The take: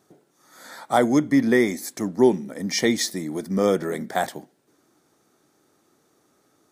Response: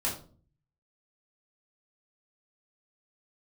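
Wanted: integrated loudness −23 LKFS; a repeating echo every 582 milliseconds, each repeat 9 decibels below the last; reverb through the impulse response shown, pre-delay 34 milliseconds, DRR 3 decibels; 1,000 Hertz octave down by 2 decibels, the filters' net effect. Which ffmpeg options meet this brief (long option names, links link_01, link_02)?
-filter_complex "[0:a]equalizer=frequency=1000:width_type=o:gain=-3,aecho=1:1:582|1164|1746|2328:0.355|0.124|0.0435|0.0152,asplit=2[link_01][link_02];[1:a]atrim=start_sample=2205,adelay=34[link_03];[link_02][link_03]afir=irnorm=-1:irlink=0,volume=-9.5dB[link_04];[link_01][link_04]amix=inputs=2:normalize=0,volume=-3dB"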